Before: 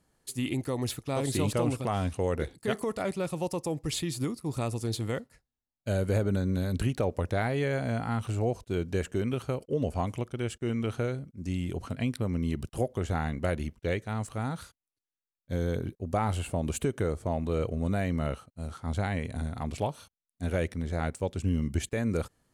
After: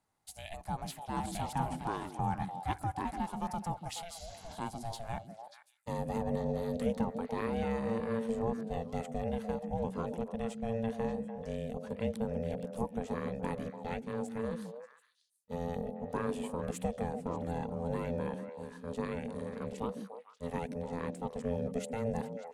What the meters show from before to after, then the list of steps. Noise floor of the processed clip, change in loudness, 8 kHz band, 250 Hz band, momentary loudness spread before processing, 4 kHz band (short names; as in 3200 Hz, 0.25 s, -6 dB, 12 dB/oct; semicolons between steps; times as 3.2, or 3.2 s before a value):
-63 dBFS, -6.0 dB, -9.0 dB, -5.0 dB, 6 LU, -9.0 dB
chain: spectral repair 4.17–4.52, 390–7500 Hz both; high-pass sweep 470 Hz -> 120 Hz, 4.66–6.34; ring modulator 340 Hz; delay with a stepping band-pass 0.147 s, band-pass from 240 Hz, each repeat 1.4 oct, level -3 dB; gain -6.5 dB